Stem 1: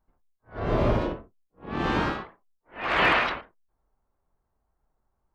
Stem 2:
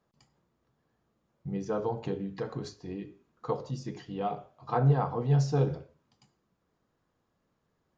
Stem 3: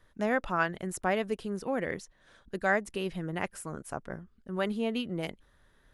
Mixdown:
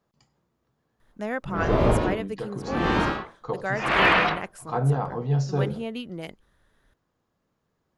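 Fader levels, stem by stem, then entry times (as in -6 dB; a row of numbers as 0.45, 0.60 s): +2.5, +1.0, -1.5 dB; 1.00, 0.00, 1.00 s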